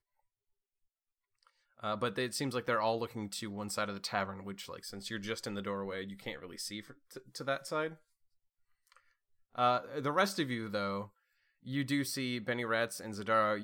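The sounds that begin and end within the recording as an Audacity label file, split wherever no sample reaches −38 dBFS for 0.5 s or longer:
1.840000	7.880000	sound
9.580000	11.040000	sound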